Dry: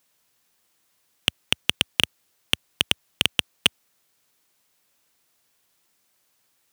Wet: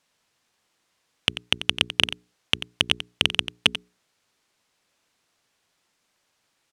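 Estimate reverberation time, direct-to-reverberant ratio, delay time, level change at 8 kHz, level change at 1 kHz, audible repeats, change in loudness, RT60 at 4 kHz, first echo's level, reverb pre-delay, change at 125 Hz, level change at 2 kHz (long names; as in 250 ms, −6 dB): no reverb audible, no reverb audible, 90 ms, −4.5 dB, +1.5 dB, 1, +0.5 dB, no reverb audible, −12.5 dB, no reverb audible, +1.0 dB, +1.0 dB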